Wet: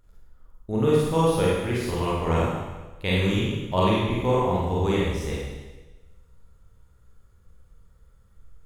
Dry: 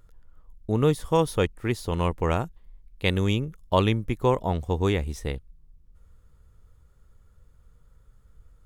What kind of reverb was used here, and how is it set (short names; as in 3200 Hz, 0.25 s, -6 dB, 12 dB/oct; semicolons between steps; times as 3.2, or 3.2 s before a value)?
Schroeder reverb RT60 1.2 s, combs from 33 ms, DRR -6.5 dB; gain -5.5 dB